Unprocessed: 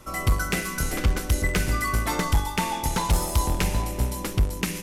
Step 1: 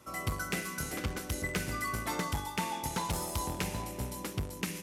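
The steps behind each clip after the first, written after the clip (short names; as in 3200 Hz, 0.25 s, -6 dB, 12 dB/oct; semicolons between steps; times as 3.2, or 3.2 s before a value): HPF 94 Hz 12 dB/oct; gain -8 dB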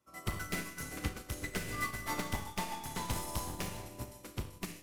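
one-sided fold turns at -31 dBFS; Schroeder reverb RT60 1.2 s, combs from 27 ms, DRR 2.5 dB; upward expander 2.5:1, over -44 dBFS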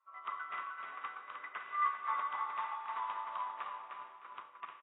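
ladder band-pass 1200 Hz, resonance 75%; feedback echo 0.306 s, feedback 25%, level -5 dB; gain +8 dB; AAC 16 kbps 16000 Hz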